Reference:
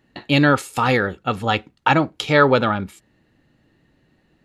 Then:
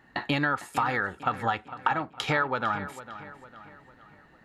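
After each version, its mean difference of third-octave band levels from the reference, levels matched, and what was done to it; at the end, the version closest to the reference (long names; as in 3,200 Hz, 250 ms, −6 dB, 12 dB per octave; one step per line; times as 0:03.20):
5.5 dB: flat-topped bell 1,200 Hz +9.5 dB
downward compressor 6 to 1, threshold −25 dBFS, peak gain reduction 21.5 dB
on a send: feedback echo with a low-pass in the loop 453 ms, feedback 48%, low-pass 4,700 Hz, level −14 dB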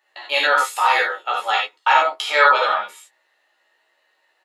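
12.0 dB: high-pass filter 650 Hz 24 dB per octave
double-tracking delay 14 ms −5 dB
reverb whose tail is shaped and stops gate 110 ms flat, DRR −3 dB
level −2.5 dB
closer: first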